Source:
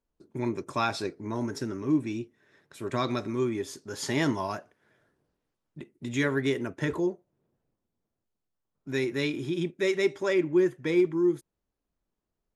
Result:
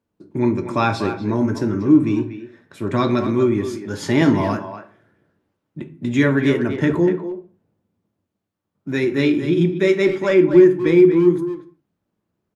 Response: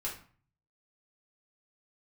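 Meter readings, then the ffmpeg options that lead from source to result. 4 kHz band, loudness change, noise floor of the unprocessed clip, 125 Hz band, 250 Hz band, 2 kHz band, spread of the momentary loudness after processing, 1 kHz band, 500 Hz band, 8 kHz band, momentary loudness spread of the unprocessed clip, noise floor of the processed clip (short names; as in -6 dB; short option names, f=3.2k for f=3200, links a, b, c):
+5.0 dB, +11.5 dB, -85 dBFS, +12.5 dB, +12.5 dB, +8.0 dB, 17 LU, +9.0 dB, +11.0 dB, n/a, 13 LU, -78 dBFS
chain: -filter_complex "[0:a]highpass=140,bass=f=250:g=8,treble=f=4k:g=-7,asplit=2[a][b];[b]adelay=240,highpass=300,lowpass=3.4k,asoftclip=type=hard:threshold=-20.5dB,volume=-9dB[c];[a][c]amix=inputs=2:normalize=0,asplit=2[d][e];[1:a]atrim=start_sample=2205,afade=t=out:st=0.3:d=0.01,atrim=end_sample=13671,lowshelf=f=480:g=6.5[f];[e][f]afir=irnorm=-1:irlink=0,volume=-6.5dB[g];[d][g]amix=inputs=2:normalize=0,volume=5dB"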